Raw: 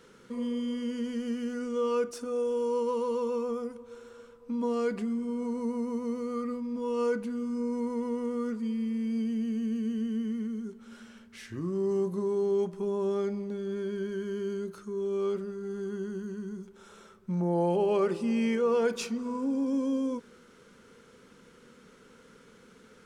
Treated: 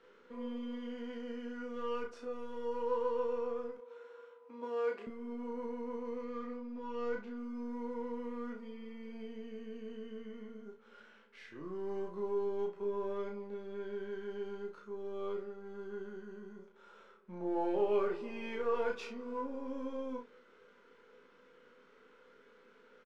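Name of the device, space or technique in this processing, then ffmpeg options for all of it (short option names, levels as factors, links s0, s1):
crystal radio: -filter_complex "[0:a]highpass=350,lowpass=2900,aeval=exprs='if(lt(val(0),0),0.708*val(0),val(0))':c=same,asettb=1/sr,asplit=3[s0][s1][s2];[s0]atrim=end=6.214[s3];[s1]atrim=start=6.21:end=7.38,asetpts=PTS-STARTPTS,afade=t=in:d=0.004:c=qsin,afade=t=out:st=1.166:d=0.004:c=qsin,lowpass=f=7500:w=0.5412,lowpass=f=7500:w=1.3066[s4];[s2]atrim=start=7.376[s5];[s3][s4]acrossfade=d=0.004:c1=hsin:c2=qsin[s6];[s6][s5]acrossfade=d=0.004:c1=qsin:c2=hsin,asplit=2[s7][s8];[s8]adelay=34,volume=0.501[s9];[s7][s9]amix=inputs=2:normalize=0,asettb=1/sr,asplit=3[s10][s11][s12];[s10]atrim=end=3.774[s13];[s11]atrim=start=3.77:end=5.07,asetpts=PTS-STARTPTS,afade=t=in:d=0.004:c=qsin,afade=t=out:st=1.296:d=0.004:c=qsin,highpass=f=290:w=0.5412,highpass=f=290:w=1.3066[s14];[s12]atrim=start=5.066[s15];[s13][s14]acrossfade=d=0.004:c1=hsin:c2=qsin[s16];[s16][s15]acrossfade=d=0.004:c1=qsin:c2=hsin,aecho=1:1:20|32:0.422|0.501,volume=0.531"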